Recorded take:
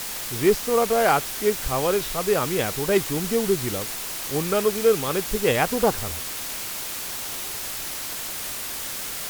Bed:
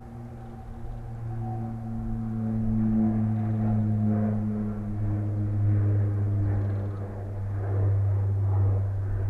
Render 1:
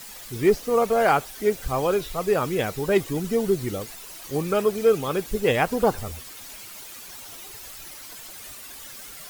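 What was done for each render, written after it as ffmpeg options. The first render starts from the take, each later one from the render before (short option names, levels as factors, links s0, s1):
-af "afftdn=nr=12:nf=-32"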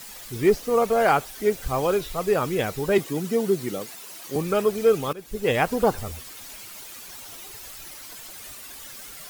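-filter_complex "[0:a]asettb=1/sr,asplit=3[s0][s1][s2];[s0]atrim=end=1.664[s3];[s1]atrim=start=1.66:end=2.29,asetpts=PTS-STARTPTS,afade=t=in:d=0.004:c=qsin,afade=t=out:st=0.626:d=0.004:c=qsin,acrusher=bits=6:mode=log:mix=0:aa=0.000001[s4];[s2]atrim=start=2.286[s5];[s3][s4]acrossfade=d=0.004:c1=hsin:c2=qsin[s6];[s6][s5]acrossfade=d=0.004:c1=qsin:c2=hsin,asettb=1/sr,asplit=3[s7][s8][s9];[s7]atrim=end=2.984[s10];[s8]atrim=start=2.98:end=4.36,asetpts=PTS-STARTPTS,afade=t=in:d=0.004:c=qsin,afade=t=out:st=1.376:d=0.004:c=qsin,highpass=f=140:w=0.5412,highpass=f=140:w=1.3066[s11];[s9]atrim=start=4.356[s12];[s10][s11]acrossfade=d=0.004:c1=hsin:c2=qsin[s13];[s13][s12]acrossfade=d=0.004:c1=qsin:c2=hsin,asplit=2[s14][s15];[s14]atrim=end=5.13,asetpts=PTS-STARTPTS,afade=t=out:st=5.126:d=0.004:c=hsin:silence=0.112202[s16];[s15]atrim=start=5.13,asetpts=PTS-STARTPTS,afade=t=in:d=0.44:silence=0.112202[s17];[s16][s17]concat=n=2:v=0:a=1"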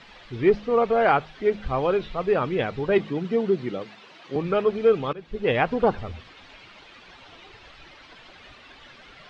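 -af "lowpass=f=3600:w=0.5412,lowpass=f=3600:w=1.3066,bandreject=f=52.07:t=h:w=4,bandreject=f=104.14:t=h:w=4,bandreject=f=156.21:t=h:w=4,bandreject=f=208.28:t=h:w=4"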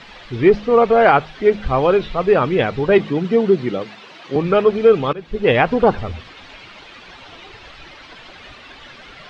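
-af "volume=2.51,alimiter=limit=0.794:level=0:latency=1"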